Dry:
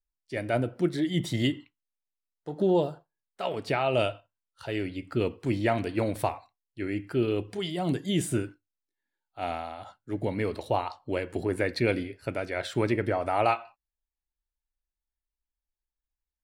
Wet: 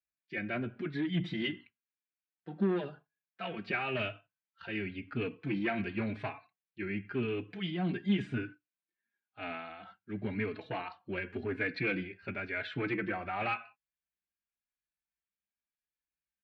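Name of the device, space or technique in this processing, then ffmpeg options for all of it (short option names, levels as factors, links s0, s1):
barber-pole flanger into a guitar amplifier: -filter_complex "[0:a]asplit=2[s0][s1];[s1]adelay=4.2,afreqshift=0.94[s2];[s0][s2]amix=inputs=2:normalize=1,asoftclip=type=tanh:threshold=0.0708,highpass=95,equalizer=f=200:t=q:w=4:g=9,equalizer=f=560:t=q:w=4:g=-8,equalizer=f=900:t=q:w=4:g=-5,equalizer=f=1600:t=q:w=4:g=9,equalizer=f=2400:t=q:w=4:g=9,lowpass=f=3800:w=0.5412,lowpass=f=3800:w=1.3066,volume=0.708"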